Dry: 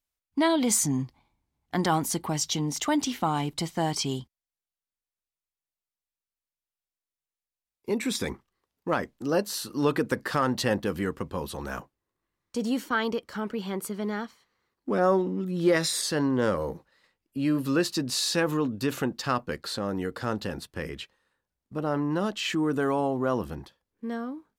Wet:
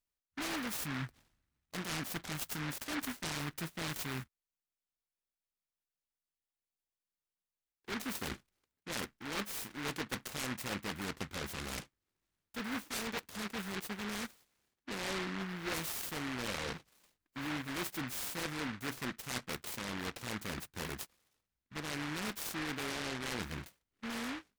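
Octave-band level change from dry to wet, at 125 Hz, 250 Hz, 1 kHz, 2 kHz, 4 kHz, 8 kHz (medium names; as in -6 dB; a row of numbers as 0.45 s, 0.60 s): -11.5 dB, -14.0 dB, -12.5 dB, -5.5 dB, -8.0 dB, -11.0 dB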